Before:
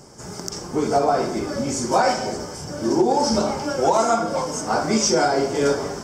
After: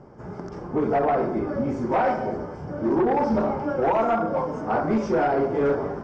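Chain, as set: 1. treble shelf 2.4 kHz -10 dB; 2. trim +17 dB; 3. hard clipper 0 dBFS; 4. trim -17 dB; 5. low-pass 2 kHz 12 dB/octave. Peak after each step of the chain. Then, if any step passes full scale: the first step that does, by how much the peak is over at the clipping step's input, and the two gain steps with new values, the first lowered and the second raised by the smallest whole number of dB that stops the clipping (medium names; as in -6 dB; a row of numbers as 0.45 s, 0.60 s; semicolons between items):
-9.0 dBFS, +8.0 dBFS, 0.0 dBFS, -17.0 dBFS, -16.5 dBFS; step 2, 8.0 dB; step 2 +9 dB, step 4 -9 dB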